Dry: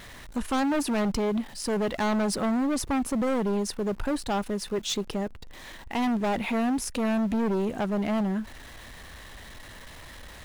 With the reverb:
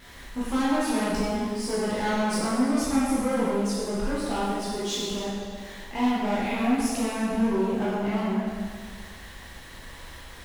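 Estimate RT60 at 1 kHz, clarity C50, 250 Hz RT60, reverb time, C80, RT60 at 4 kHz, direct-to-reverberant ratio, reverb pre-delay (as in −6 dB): 1.7 s, −3.0 dB, 1.7 s, 1.7 s, 0.0 dB, 1.6 s, −9.0 dB, 6 ms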